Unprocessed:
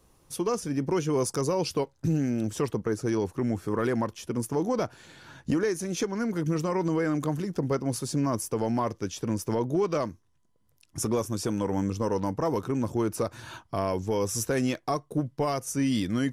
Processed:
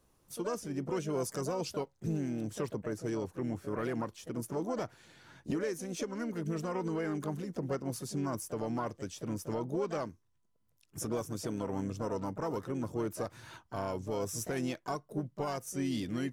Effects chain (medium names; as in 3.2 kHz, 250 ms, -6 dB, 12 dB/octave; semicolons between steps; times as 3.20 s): harmony voices +5 st -9 dB; trim -8.5 dB